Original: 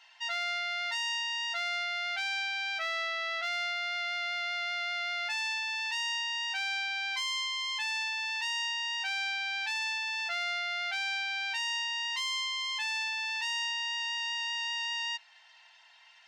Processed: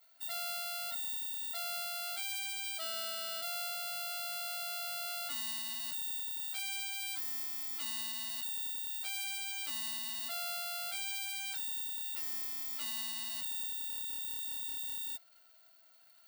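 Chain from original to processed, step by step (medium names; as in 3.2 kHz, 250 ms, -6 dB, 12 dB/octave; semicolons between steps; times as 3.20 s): sorted samples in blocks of 8 samples; fifteen-band graphic EQ 250 Hz +11 dB, 1 kHz -5 dB, 2.5 kHz -9 dB; reverse; upward compressor, threshold -54 dBFS; reverse; formant shift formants -4 st; peaking EQ 190 Hz +3 dB 0.62 oct; trim -3.5 dB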